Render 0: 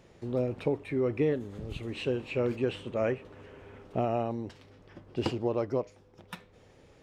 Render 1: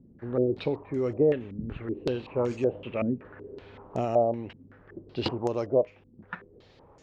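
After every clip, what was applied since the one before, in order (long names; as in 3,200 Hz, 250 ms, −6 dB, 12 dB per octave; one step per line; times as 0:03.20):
low-pass on a step sequencer 5.3 Hz 240–6,700 Hz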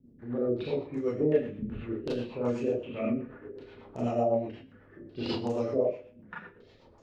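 four-comb reverb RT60 0.44 s, combs from 26 ms, DRR −6.5 dB
rotating-speaker cabinet horn 8 Hz
level −7 dB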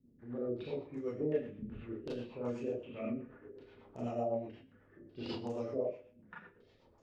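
notch filter 4,100 Hz, Q 21
level −8.5 dB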